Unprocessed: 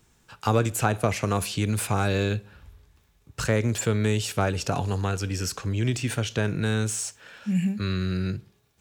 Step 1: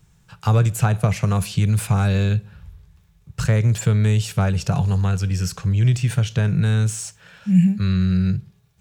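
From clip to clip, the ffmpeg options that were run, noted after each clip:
-af "lowshelf=f=210:t=q:w=3:g=7"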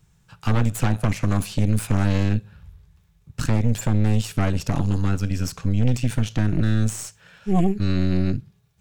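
-af "aeval=exprs='0.531*(cos(1*acos(clip(val(0)/0.531,-1,1)))-cos(1*PI/2))+0.0473*(cos(5*acos(clip(val(0)/0.531,-1,1)))-cos(5*PI/2))+0.168*(cos(6*acos(clip(val(0)/0.531,-1,1)))-cos(6*PI/2))':c=same,volume=-6.5dB"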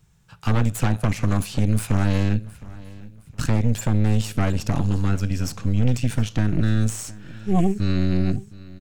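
-af "aecho=1:1:714|1428|2142:0.1|0.038|0.0144"

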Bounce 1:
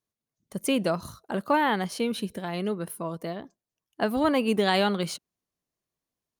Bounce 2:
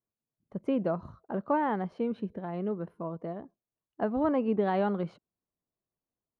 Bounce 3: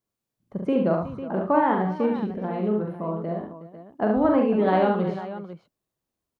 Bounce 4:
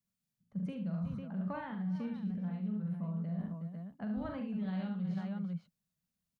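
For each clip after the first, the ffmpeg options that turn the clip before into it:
-af "lowpass=1.1k,volume=-3dB"
-af "aecho=1:1:43|71|114|367|499:0.596|0.596|0.251|0.168|0.251,volume=5dB"
-filter_complex "[0:a]acrossover=split=150|3000[a][b][c];[b]acompressor=threshold=-30dB:ratio=2[d];[a][d][c]amix=inputs=3:normalize=0,firequalizer=gain_entry='entry(120,0);entry(180,11);entry(320,-16);entry(530,-9);entry(1000,-9);entry(1500,-2);entry(5200,1)':delay=0.05:min_phase=1,areverse,acompressor=threshold=-31dB:ratio=6,areverse,volume=-3.5dB"

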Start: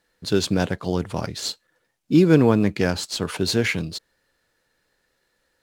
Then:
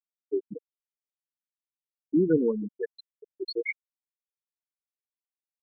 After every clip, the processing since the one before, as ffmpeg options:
-af "highpass=f=470:p=1,afftfilt=real='re*gte(hypot(re,im),0.398)':imag='im*gte(hypot(re,im),0.398)':win_size=1024:overlap=0.75,equalizer=f=1.2k:w=4.8:g=-12.5,volume=-1.5dB"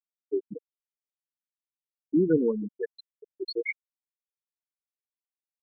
-af anull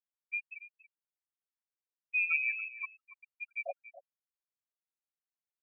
-filter_complex "[0:a]acrossover=split=100|470|2000[a][b][c][d];[c]crystalizer=i=6:c=0[e];[a][b][e][d]amix=inputs=4:normalize=0,aecho=1:1:281:0.168,lowpass=f=2.4k:t=q:w=0.5098,lowpass=f=2.4k:t=q:w=0.6013,lowpass=f=2.4k:t=q:w=0.9,lowpass=f=2.4k:t=q:w=2.563,afreqshift=-2800,volume=-8.5dB"

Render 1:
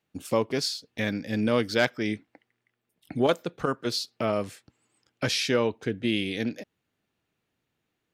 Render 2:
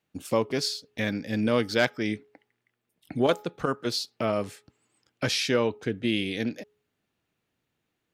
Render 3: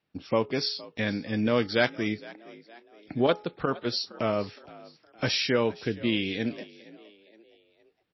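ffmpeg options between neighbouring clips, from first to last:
-af "bandreject=f=419.8:t=h:w=4,bandreject=f=839.6:t=h:w=4,bandreject=f=1.2594k:t=h:w=4"
-filter_complex "[0:a]asplit=4[a][b][c][d];[b]adelay=465,afreqshift=52,volume=-20.5dB[e];[c]adelay=930,afreqshift=104,volume=-27.2dB[f];[d]adelay=1395,afreqshift=156,volume=-34dB[g];[a][e][f][g]amix=inputs=4:normalize=0" -ar 16000 -c:a libmp3lame -b:a 24k

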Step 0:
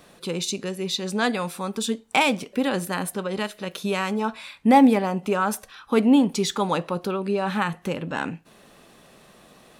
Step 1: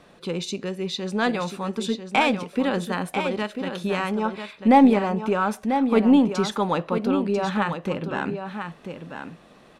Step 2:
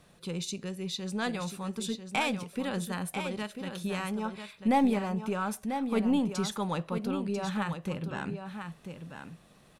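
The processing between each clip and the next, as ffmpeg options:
-af "aemphasis=mode=reproduction:type=50fm,aecho=1:1:993:0.398,aeval=exprs='0.596*(cos(1*acos(clip(val(0)/0.596,-1,1)))-cos(1*PI/2))+0.0106*(cos(4*acos(clip(val(0)/0.596,-1,1)))-cos(4*PI/2))':c=same"
-af "firequalizer=gain_entry='entry(150,0);entry(260,-9);entry(10000,5)':delay=0.05:min_phase=1,volume=-2dB"

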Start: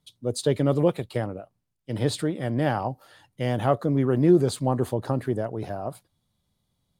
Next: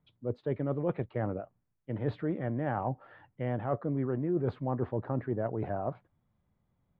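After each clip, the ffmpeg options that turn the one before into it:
-af "lowpass=f=2.1k:w=0.5412,lowpass=f=2.1k:w=1.3066,areverse,acompressor=threshold=-28dB:ratio=6,areverse"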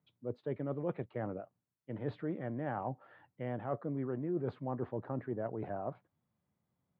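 -af "highpass=120,volume=-5dB"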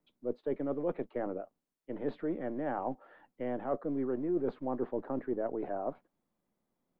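-filter_complex "[0:a]acrossover=split=170|640[a][b][c];[a]aeval=exprs='abs(val(0))':c=same[d];[d][b][c]amix=inputs=3:normalize=0,equalizer=f=400:t=o:w=2.2:g=5"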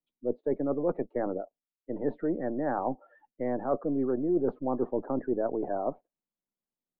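-af "afftdn=nr=22:nf=-48,volume=5dB"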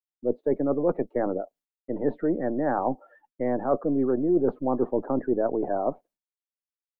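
-af "agate=range=-33dB:threshold=-56dB:ratio=3:detection=peak,volume=4.5dB"

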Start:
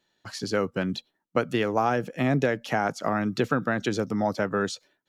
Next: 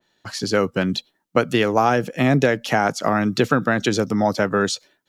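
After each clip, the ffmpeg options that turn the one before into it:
-af "adynamicequalizer=threshold=0.0126:dfrequency=2700:dqfactor=0.7:tfrequency=2700:tqfactor=0.7:attack=5:release=100:ratio=0.375:range=2:mode=boostabove:tftype=highshelf,volume=6.5dB"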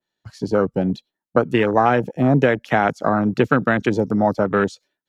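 -af "afwtdn=0.0708,volume=1.5dB"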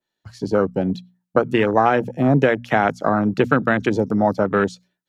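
-af "bandreject=f=60:t=h:w=6,bandreject=f=120:t=h:w=6,bandreject=f=180:t=h:w=6,bandreject=f=240:t=h:w=6"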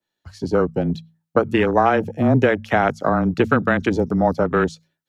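-af "afreqshift=-18"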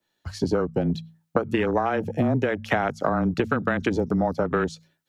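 -af "acompressor=threshold=-25dB:ratio=10,volume=5.5dB"

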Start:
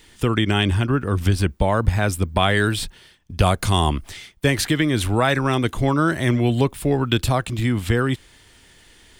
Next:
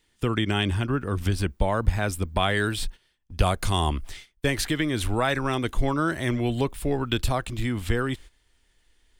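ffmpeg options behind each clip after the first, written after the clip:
-af "agate=range=-13dB:threshold=-37dB:ratio=16:detection=peak,asubboost=boost=5:cutoff=50,volume=-5dB"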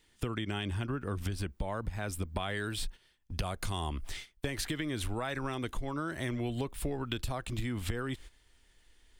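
-filter_complex "[0:a]asplit=2[a][b];[b]alimiter=limit=-15dB:level=0:latency=1:release=65,volume=1dB[c];[a][c]amix=inputs=2:normalize=0,acompressor=threshold=-25dB:ratio=10,volume=-6dB"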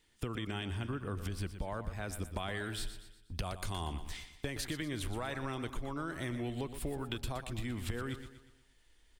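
-af "aecho=1:1:120|240|360|480|600:0.282|0.127|0.0571|0.0257|0.0116,volume=-3.5dB"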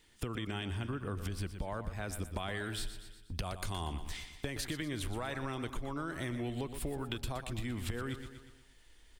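-af "acompressor=threshold=-49dB:ratio=1.5,volume=5.5dB"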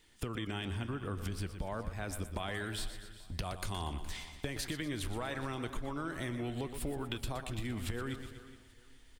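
-af "flanger=delay=2.5:depth=4.5:regen=87:speed=1:shape=triangular,aecho=1:1:417|834|1251:0.133|0.0413|0.0128,volume=4.5dB"

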